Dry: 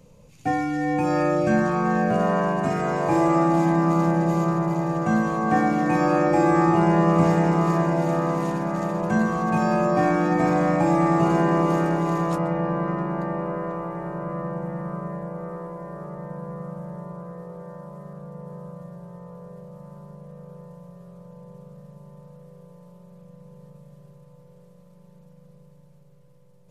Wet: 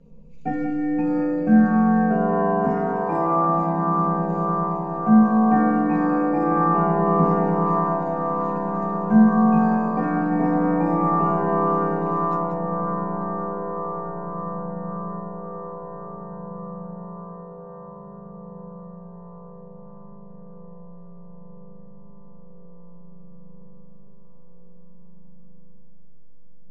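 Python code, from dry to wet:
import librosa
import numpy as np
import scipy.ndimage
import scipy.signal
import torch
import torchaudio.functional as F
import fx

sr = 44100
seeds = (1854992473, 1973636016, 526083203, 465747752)

y = fx.envelope_sharpen(x, sr, power=1.5)
y = scipy.signal.sosfilt(scipy.signal.butter(2, 4600.0, 'lowpass', fs=sr, output='sos'), y)
y = y + 0.81 * np.pad(y, (int(4.3 * sr / 1000.0), 0))[:len(y)]
y = y + 10.0 ** (-7.5 / 20.0) * np.pad(y, (int(185 * sr / 1000.0), 0))[:len(y)]
y = fx.room_shoebox(y, sr, seeds[0], volume_m3=270.0, walls='furnished', distance_m=1.2)
y = y * 10.0 ** (-3.5 / 20.0)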